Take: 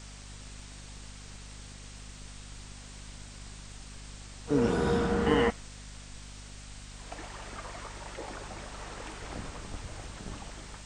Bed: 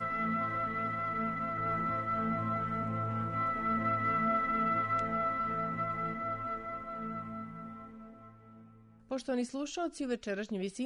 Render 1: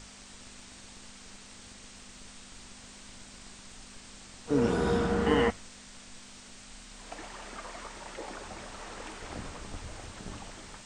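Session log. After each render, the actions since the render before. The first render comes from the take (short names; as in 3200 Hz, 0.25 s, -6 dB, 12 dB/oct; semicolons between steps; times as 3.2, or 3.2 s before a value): notches 50/100/150 Hz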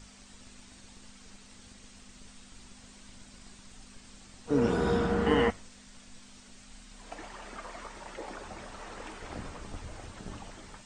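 denoiser 6 dB, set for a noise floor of -50 dBFS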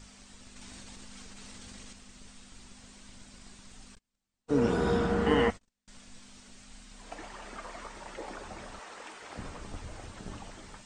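0.56–1.93 fast leveller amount 100%; 3.95–5.88 gate -45 dBFS, range -35 dB; 8.79–9.38 HPF 610 Hz 6 dB/oct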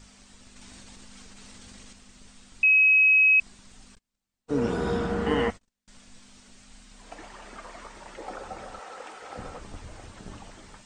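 2.63–3.4 bleep 2550 Hz -15 dBFS; 8.26–9.59 small resonant body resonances 520/760/1300 Hz, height 10 dB, ringing for 30 ms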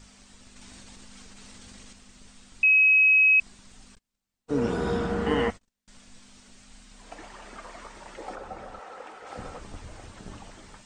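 8.35–9.27 high shelf 3200 Hz -9 dB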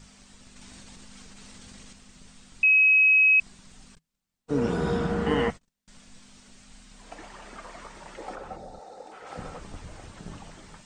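8.56–9.12 spectral gain 920–3500 Hz -13 dB; bell 160 Hz +10 dB 0.21 oct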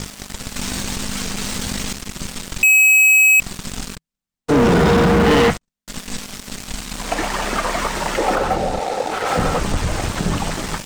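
sample leveller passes 5; in parallel at +0.5 dB: compressor, threshold -25 dBFS, peak gain reduction 10 dB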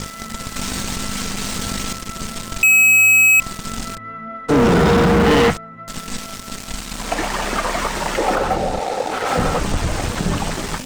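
add bed -1.5 dB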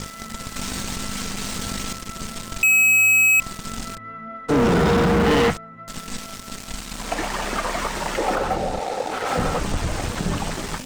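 gain -4 dB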